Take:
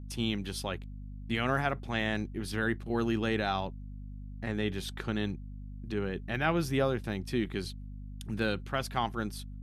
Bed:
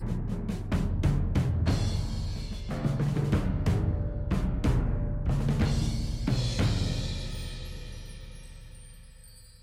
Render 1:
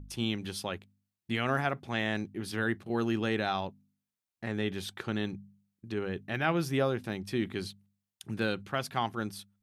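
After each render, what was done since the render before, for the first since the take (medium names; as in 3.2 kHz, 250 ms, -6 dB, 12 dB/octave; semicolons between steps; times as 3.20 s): de-hum 50 Hz, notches 5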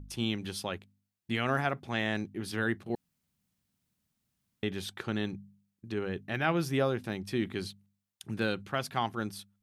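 2.95–4.63 s: room tone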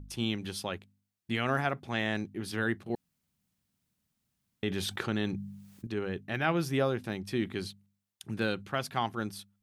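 4.65–5.87 s: level flattener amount 50%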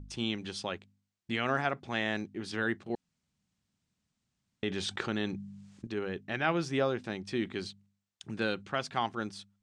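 dynamic bell 100 Hz, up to -6 dB, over -46 dBFS, Q 0.78; steep low-pass 8.2 kHz 36 dB/octave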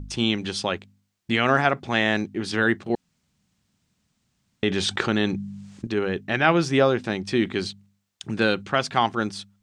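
trim +10.5 dB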